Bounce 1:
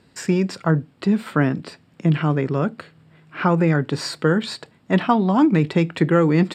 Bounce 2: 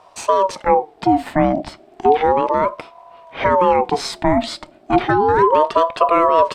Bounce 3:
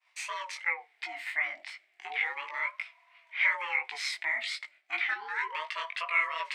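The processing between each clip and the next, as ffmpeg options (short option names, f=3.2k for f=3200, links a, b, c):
-filter_complex "[0:a]lowshelf=f=200:g=11.5,asplit=2[a][b];[b]alimiter=limit=-16.5dB:level=0:latency=1:release=22,volume=1dB[c];[a][c]amix=inputs=2:normalize=0,aeval=exprs='val(0)*sin(2*PI*650*n/s+650*0.3/0.33*sin(2*PI*0.33*n/s))':c=same,volume=-1.5dB"
-af "agate=range=-33dB:threshold=-42dB:ratio=3:detection=peak,flanger=delay=17.5:depth=4.2:speed=2.8,highpass=f=2.1k:t=q:w=6.5,volume=-8dB"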